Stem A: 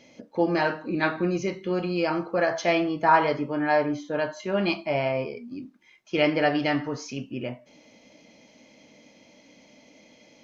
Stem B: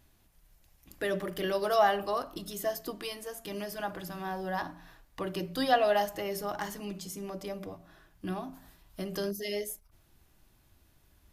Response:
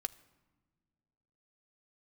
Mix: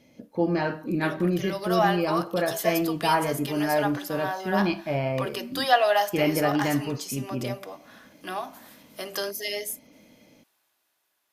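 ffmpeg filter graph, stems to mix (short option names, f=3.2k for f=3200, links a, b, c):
-filter_complex "[0:a]lowshelf=f=280:g=11.5,dynaudnorm=f=130:g=3:m=3.5dB,volume=-8dB[a];[1:a]highpass=640,dynaudnorm=f=300:g=13:m=15.5dB,volume=-4.5dB[b];[a][b]amix=inputs=2:normalize=0"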